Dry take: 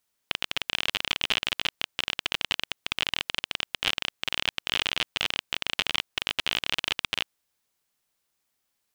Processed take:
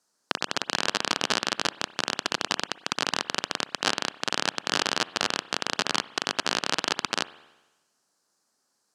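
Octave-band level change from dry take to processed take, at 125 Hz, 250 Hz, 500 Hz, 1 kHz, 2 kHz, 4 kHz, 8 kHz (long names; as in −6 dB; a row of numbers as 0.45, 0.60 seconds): +2.0, +8.5, +8.5, +8.0, +0.5, −1.0, +8.0 decibels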